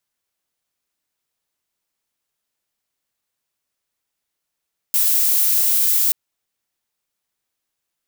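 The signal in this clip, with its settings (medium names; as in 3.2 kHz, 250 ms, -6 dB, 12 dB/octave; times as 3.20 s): noise violet, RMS -16.5 dBFS 1.18 s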